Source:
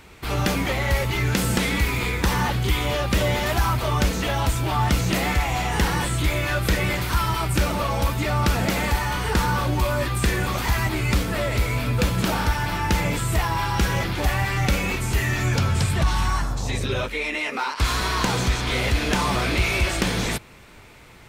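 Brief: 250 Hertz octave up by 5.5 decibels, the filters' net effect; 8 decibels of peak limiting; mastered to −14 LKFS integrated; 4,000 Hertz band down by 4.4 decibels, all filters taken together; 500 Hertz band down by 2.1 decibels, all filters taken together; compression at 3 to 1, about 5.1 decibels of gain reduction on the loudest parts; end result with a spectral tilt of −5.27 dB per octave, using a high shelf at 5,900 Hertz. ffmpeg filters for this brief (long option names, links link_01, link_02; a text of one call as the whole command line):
ffmpeg -i in.wav -af "equalizer=frequency=250:width_type=o:gain=9,equalizer=frequency=500:width_type=o:gain=-5.5,equalizer=frequency=4000:width_type=o:gain=-7,highshelf=frequency=5900:gain=3.5,acompressor=threshold=-21dB:ratio=3,volume=13.5dB,alimiter=limit=-4.5dB:level=0:latency=1" out.wav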